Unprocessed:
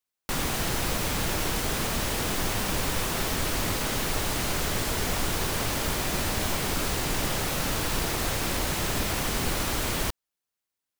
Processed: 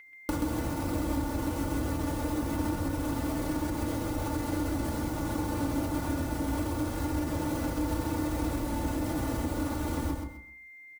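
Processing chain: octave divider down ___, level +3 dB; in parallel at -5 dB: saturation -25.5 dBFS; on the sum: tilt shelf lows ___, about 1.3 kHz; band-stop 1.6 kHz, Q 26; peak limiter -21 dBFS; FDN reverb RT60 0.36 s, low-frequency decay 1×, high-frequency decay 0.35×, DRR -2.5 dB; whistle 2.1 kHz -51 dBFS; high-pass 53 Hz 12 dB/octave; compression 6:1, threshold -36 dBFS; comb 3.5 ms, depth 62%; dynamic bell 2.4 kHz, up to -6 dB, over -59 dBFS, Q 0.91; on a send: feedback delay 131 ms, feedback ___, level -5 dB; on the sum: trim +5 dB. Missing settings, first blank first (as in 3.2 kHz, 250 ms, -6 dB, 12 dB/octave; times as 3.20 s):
1 oct, +4 dB, 24%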